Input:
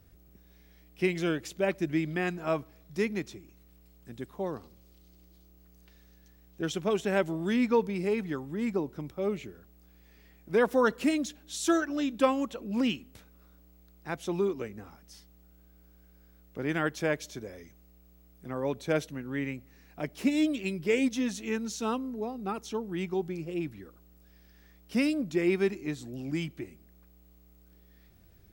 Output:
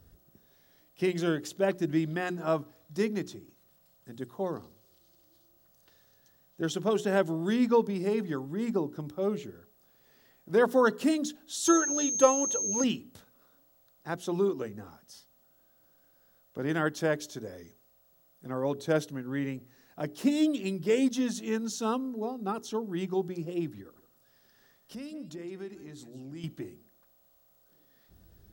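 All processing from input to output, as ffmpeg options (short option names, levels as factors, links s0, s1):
-filter_complex "[0:a]asettb=1/sr,asplit=3[s0][s1][s2];[s0]atrim=end=11.654[s3];[s1]atrim=start=11.65:end=12.84,asetpts=PTS-STARTPTS,afade=t=in:d=0.004:c=qsin,afade=t=out:st=1.186:d=0.004:c=qsin,aecho=1:1:2.2:0.58,atrim=end_sample=52479,aeval=exprs='val(0)+0.0316*sin(2*PI*6400*n/s)':c=same[s4];[s2]atrim=start=12.836[s5];[s3][s4]acrossfade=d=0.004:c1=hsin:c2=qsin[s6];[s6][s5]acrossfade=d=0.004:c1=qsin:c2=hsin,asettb=1/sr,asplit=3[s7][s8][s9];[s7]atrim=end=23.814[s10];[s8]atrim=start=23.81:end=26.44,asetpts=PTS-STARTPTS,afade=t=in:d=0.004:c=qsin,afade=t=out:st=2.626:d=0.004:c=qsin,acompressor=threshold=0.00501:ratio=2.5:attack=3.2:release=140:knee=1:detection=peak,aecho=1:1:166:0.2,atrim=end_sample=115983[s11];[s9]atrim=start=26.436[s12];[s10][s11]acrossfade=d=0.004:c1=hsin:c2=qsin[s13];[s13][s12]acrossfade=d=0.004:c1=qsin:c2=hsin,equalizer=f=2300:t=o:w=0.41:g=-10.5,bandreject=f=60:t=h:w=6,bandreject=f=120:t=h:w=6,bandreject=f=180:t=h:w=6,bandreject=f=240:t=h:w=6,bandreject=f=300:t=h:w=6,bandreject=f=360:t=h:w=6,bandreject=f=420:t=h:w=6,volume=1.19"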